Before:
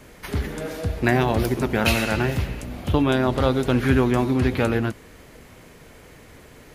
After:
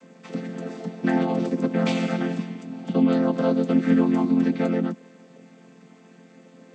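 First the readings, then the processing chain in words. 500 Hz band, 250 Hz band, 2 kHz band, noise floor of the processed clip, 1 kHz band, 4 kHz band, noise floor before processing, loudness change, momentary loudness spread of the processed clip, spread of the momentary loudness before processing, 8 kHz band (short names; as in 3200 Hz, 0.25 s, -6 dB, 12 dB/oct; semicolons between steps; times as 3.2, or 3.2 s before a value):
-3.5 dB, +2.0 dB, -9.0 dB, -52 dBFS, -5.5 dB, -8.5 dB, -47 dBFS, -1.0 dB, 14 LU, 10 LU, under -10 dB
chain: chord vocoder major triad, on F3; high shelf 5300 Hz +10.5 dB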